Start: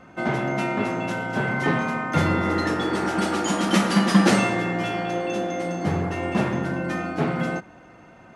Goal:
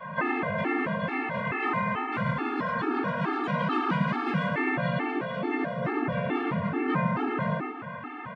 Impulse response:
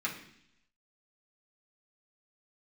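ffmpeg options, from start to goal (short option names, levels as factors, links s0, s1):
-filter_complex "[0:a]highpass=f=150:w=0.5412,highpass=f=150:w=1.3066,equalizer=f=230:t=q:w=4:g=-6,equalizer=f=1200:t=q:w=4:g=8,equalizer=f=1800:t=q:w=4:g=-4,lowpass=f=3300:w=0.5412,lowpass=f=3300:w=1.3066,asplit=2[s0][s1];[s1]volume=7.94,asoftclip=hard,volume=0.126,volume=0.501[s2];[s0][s2]amix=inputs=2:normalize=0,adynamicequalizer=threshold=0.0112:dfrequency=230:dqfactor=5.2:tfrequency=230:tqfactor=5.2:attack=5:release=100:ratio=0.375:range=3:mode=cutabove:tftype=bell,acompressor=threshold=0.0316:ratio=20[s3];[1:a]atrim=start_sample=2205,afade=t=out:st=0.45:d=0.01,atrim=end_sample=20286[s4];[s3][s4]afir=irnorm=-1:irlink=0,asplit=4[s5][s6][s7][s8];[s6]asetrate=33038,aresample=44100,atempo=1.33484,volume=0.562[s9];[s7]asetrate=37084,aresample=44100,atempo=1.18921,volume=0.891[s10];[s8]asetrate=55563,aresample=44100,atempo=0.793701,volume=0.501[s11];[s5][s9][s10][s11]amix=inputs=4:normalize=0,aecho=1:1:108:0.447,afftfilt=real='re*gt(sin(2*PI*2.3*pts/sr)*(1-2*mod(floor(b*sr/1024/230),2)),0)':imag='im*gt(sin(2*PI*2.3*pts/sr)*(1-2*mod(floor(b*sr/1024/230),2)),0)':win_size=1024:overlap=0.75"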